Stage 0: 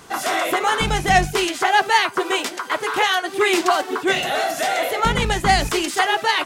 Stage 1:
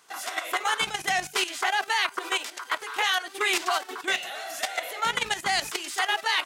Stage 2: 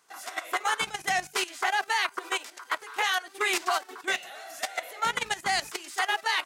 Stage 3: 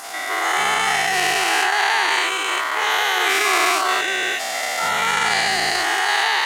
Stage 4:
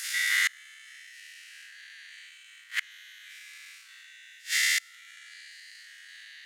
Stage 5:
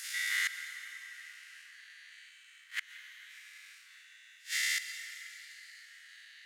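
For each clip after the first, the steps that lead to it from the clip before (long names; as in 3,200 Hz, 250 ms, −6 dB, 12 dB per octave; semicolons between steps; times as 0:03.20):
high-pass filter 1,300 Hz 6 dB per octave; output level in coarse steps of 12 dB
parametric band 3,200 Hz −3.5 dB 0.69 octaves; expander for the loud parts 1.5 to 1, over −36 dBFS
every bin's largest magnitude spread in time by 480 ms; surface crackle 120 per second −31 dBFS
peak hold with a decay on every bin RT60 0.94 s; elliptic high-pass filter 1,700 Hz, stop band 60 dB; gate with flip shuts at −13 dBFS, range −29 dB
convolution reverb RT60 5.3 s, pre-delay 108 ms, DRR 8 dB; level −7 dB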